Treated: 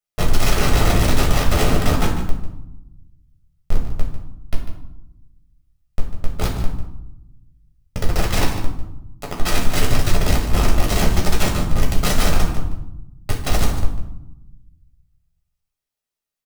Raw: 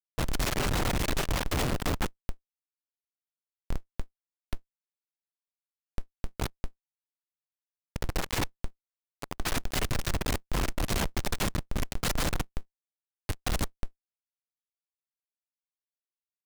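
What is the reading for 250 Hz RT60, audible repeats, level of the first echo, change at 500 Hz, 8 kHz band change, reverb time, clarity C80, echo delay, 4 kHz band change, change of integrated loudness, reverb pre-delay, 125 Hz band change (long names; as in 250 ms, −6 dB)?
1.4 s, 1, −12.0 dB, +11.0 dB, +9.0 dB, 0.85 s, 7.0 dB, 147 ms, +9.0 dB, +10.5 dB, 5 ms, +13.0 dB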